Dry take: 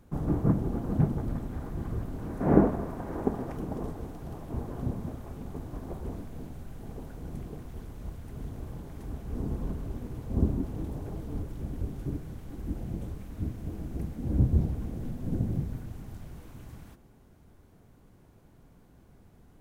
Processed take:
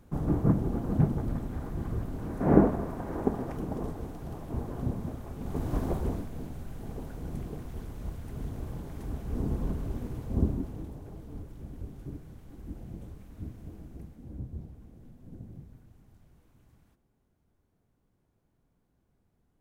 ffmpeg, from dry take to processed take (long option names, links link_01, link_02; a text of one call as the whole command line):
ffmpeg -i in.wav -af "volume=9.5dB,afade=type=in:start_time=5.37:duration=0.4:silence=0.354813,afade=type=out:start_time=5.77:duration=0.52:silence=0.421697,afade=type=out:start_time=10.03:duration=0.94:silence=0.354813,afade=type=out:start_time=13.6:duration=0.82:silence=0.354813" out.wav